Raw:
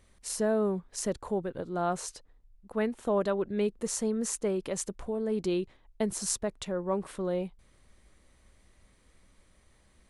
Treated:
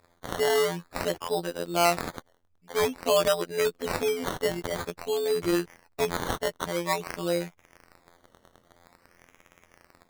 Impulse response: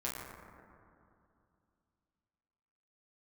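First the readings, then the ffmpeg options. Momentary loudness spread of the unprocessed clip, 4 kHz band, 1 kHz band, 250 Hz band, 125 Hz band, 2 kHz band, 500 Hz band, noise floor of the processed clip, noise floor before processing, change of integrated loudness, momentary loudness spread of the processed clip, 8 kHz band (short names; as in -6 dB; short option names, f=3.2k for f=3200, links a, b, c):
7 LU, +11.0 dB, +7.5 dB, -1.5 dB, +1.5 dB, +11.5 dB, +4.0 dB, -66 dBFS, -64 dBFS, +4.0 dB, 9 LU, -1.5 dB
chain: -filter_complex "[0:a]acrossover=split=2200[a][b];[b]dynaudnorm=f=200:g=3:m=9dB[c];[a][c]amix=inputs=2:normalize=0,afftfilt=real='hypot(re,im)*cos(PI*b)':imag='0':win_size=2048:overlap=0.75,asplit=2[d][e];[e]highpass=f=720:p=1,volume=18dB,asoftclip=type=tanh:threshold=-2.5dB[f];[d][f]amix=inputs=2:normalize=0,lowpass=f=2.3k:p=1,volume=-6dB,acrusher=samples=14:mix=1:aa=0.000001:lfo=1:lforange=8.4:lforate=0.5"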